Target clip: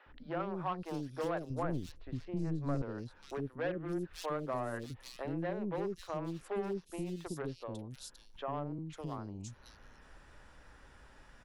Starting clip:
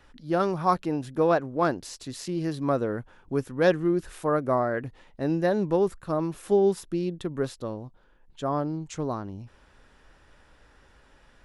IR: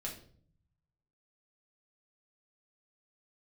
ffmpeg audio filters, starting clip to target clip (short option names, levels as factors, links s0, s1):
-filter_complex "[0:a]asettb=1/sr,asplit=3[s0][s1][s2];[s0]atrim=end=8.724[s3];[s1]atrim=start=8.72:end=9.12,asetpts=PTS-STARTPTS,afade=t=in:d=0.004:c=qsin,afade=t=out:st=0.396:d=0.004:c=qsin,acrossover=split=300[s4][s5];[s5]acompressor=threshold=0.00708:ratio=2[s6];[s4][s6]amix=inputs=2:normalize=0[s7];[s2]atrim=start=9.116[s8];[s3][s7]acrossfade=d=0.004:c1=hsin:c2=qsin[s9];[s9][s8]acrossfade=d=0.004:c1=qsin:c2=hsin,aeval=exprs='0.398*(cos(1*acos(clip(val(0)/0.398,-1,1)))-cos(1*PI/2))+0.0251*(cos(4*acos(clip(val(0)/0.398,-1,1)))-cos(4*PI/2))+0.0251*(cos(7*acos(clip(val(0)/0.398,-1,1)))-cos(7*PI/2))':c=same,asoftclip=type=hard:threshold=0.112,asettb=1/sr,asplit=3[s10][s11][s12];[s10]atrim=end=1.444[s13];[s11]atrim=start=1.44:end=2.76,asetpts=PTS-STARTPTS,afade=t=in:d=0.004:c=qsin,afade=t=out:st=1.316:d=0.004:c=qsin,aemphasis=mode=reproduction:type=riaa[s14];[s12]atrim=start=2.756[s15];[s13][s14]acrossfade=d=0.004:c1=hsin:c2=qsin[s16];[s16][s15]acrossfade=d=0.004:c1=qsin:c2=hsin,acrossover=split=420|3300[s17][s18][s19];[s17]adelay=60[s20];[s19]adelay=540[s21];[s20][s18][s21]amix=inputs=3:normalize=0,acompressor=threshold=0.00316:ratio=2,volume=1.78"